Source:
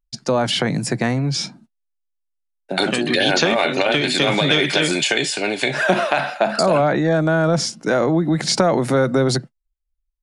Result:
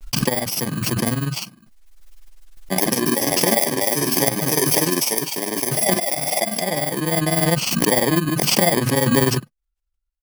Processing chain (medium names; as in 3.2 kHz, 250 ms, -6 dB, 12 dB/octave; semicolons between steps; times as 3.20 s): bit-reversed sample order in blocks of 32 samples; granulator 63 ms, spray 13 ms, pitch spread up and down by 0 st; random-step tremolo 3.5 Hz; swell ahead of each attack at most 27 dB/s; trim +3.5 dB